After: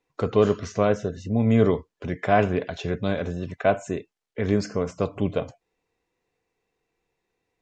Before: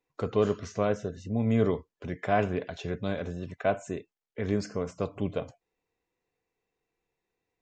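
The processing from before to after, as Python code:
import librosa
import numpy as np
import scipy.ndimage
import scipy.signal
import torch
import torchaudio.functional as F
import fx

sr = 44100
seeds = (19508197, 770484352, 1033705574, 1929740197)

y = scipy.signal.sosfilt(scipy.signal.butter(2, 8700.0, 'lowpass', fs=sr, output='sos'), x)
y = y * 10.0 ** (6.0 / 20.0)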